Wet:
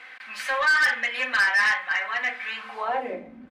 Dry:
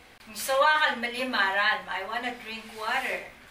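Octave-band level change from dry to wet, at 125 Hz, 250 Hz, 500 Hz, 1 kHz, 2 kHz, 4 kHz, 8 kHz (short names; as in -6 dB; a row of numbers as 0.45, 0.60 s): n/a, -5.0 dB, -3.5 dB, -1.5 dB, +5.5 dB, -1.0 dB, -1.0 dB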